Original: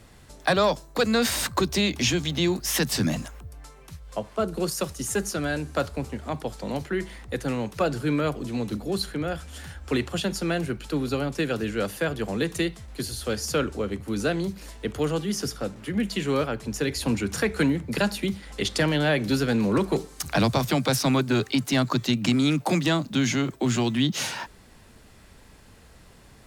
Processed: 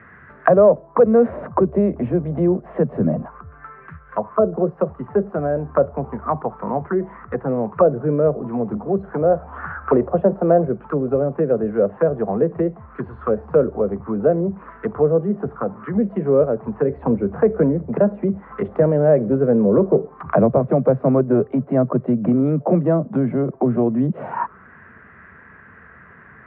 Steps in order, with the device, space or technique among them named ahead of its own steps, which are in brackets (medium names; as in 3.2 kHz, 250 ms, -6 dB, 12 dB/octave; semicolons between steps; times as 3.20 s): 9.12–10.69 s: peaking EQ 840 Hz +8.5 dB 1.5 oct; envelope filter bass rig (touch-sensitive low-pass 570–1800 Hz down, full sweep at -22.5 dBFS; cabinet simulation 83–2200 Hz, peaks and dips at 110 Hz -9 dB, 300 Hz -8 dB, 560 Hz -6 dB, 820 Hz -7 dB, 1.2 kHz +3 dB); trim +7 dB